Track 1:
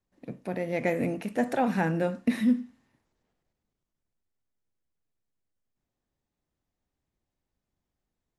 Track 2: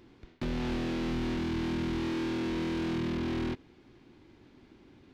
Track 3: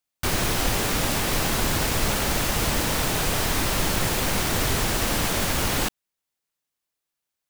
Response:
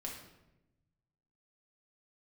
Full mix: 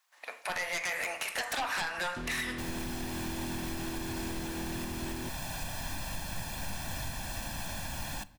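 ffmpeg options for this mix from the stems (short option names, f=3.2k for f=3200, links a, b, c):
-filter_complex "[0:a]highpass=f=950:w=0.5412,highpass=f=950:w=1.3066,acompressor=threshold=-37dB:ratio=6,aeval=exprs='0.0355*sin(PI/2*2.82*val(0)/0.0355)':c=same,volume=1.5dB,asplit=2[a][b];[b]volume=-3.5dB[c];[1:a]adelay=1750,volume=-5dB[d];[2:a]aecho=1:1:1.2:0.84,adelay=2350,volume=-17.5dB,asplit=2[e][f];[f]volume=-12.5dB[g];[3:a]atrim=start_sample=2205[h];[c][g]amix=inputs=2:normalize=0[i];[i][h]afir=irnorm=-1:irlink=0[j];[a][d][e][j]amix=inputs=4:normalize=0,alimiter=level_in=2dB:limit=-24dB:level=0:latency=1:release=288,volume=-2dB"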